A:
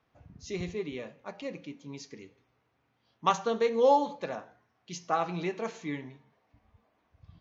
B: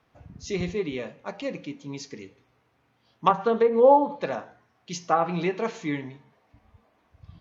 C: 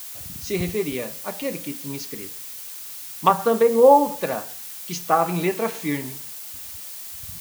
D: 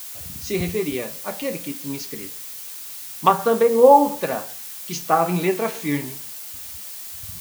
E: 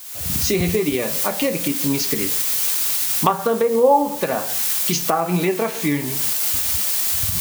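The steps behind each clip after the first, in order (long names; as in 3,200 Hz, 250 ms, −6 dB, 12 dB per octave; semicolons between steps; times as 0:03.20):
treble cut that deepens with the level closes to 1,200 Hz, closed at −22.5 dBFS; level +6.5 dB
background noise blue −40 dBFS; level +3.5 dB
flanger 1.1 Hz, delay 10 ms, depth 4.3 ms, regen +66%; level +5.5 dB
camcorder AGC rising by 50 dB per second; level −3 dB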